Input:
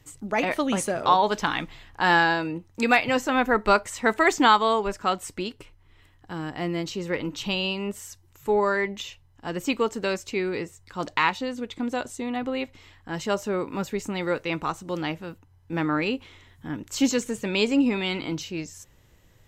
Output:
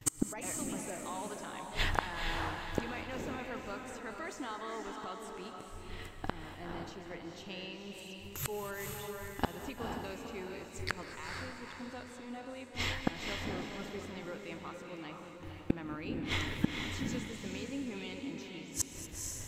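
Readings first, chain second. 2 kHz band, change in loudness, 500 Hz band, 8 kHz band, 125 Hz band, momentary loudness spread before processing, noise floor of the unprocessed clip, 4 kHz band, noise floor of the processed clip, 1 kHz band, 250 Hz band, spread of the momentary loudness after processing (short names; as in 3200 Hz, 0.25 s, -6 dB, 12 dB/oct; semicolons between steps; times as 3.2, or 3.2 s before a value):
-14.0 dB, -14.5 dB, -16.0 dB, -3.5 dB, -7.0 dB, 14 LU, -58 dBFS, -11.0 dB, -49 dBFS, -17.0 dB, -13.0 dB, 10 LU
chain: expander -48 dBFS; limiter -15.5 dBFS, peak gain reduction 9 dB; flipped gate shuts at -32 dBFS, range -36 dB; diffused feedback echo 0.471 s, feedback 42%, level -3.5 dB; non-linear reverb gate 0.26 s rising, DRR 11 dB; gain +18 dB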